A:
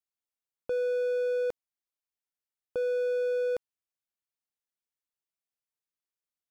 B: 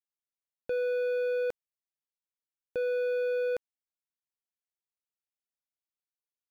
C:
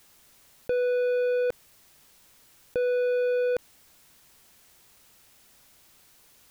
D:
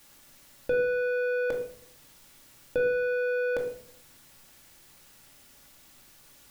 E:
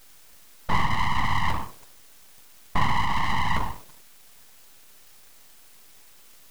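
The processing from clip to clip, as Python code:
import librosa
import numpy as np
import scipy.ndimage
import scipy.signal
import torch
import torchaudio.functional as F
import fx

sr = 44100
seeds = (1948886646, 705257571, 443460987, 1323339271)

y1 = fx.leveller(x, sr, passes=3)
y1 = F.gain(torch.from_numpy(y1), -3.5).numpy()
y2 = fx.low_shelf(y1, sr, hz=200.0, db=6.0)
y2 = fx.env_flatten(y2, sr, amount_pct=50)
y2 = F.gain(torch.from_numpy(y2), 3.5).numpy()
y3 = fx.room_shoebox(y2, sr, seeds[0], volume_m3=820.0, walls='furnished', distance_m=2.4)
y4 = fx.whisperise(y3, sr, seeds[1])
y4 = np.abs(y4)
y4 = F.gain(torch.from_numpy(y4), 6.0).numpy()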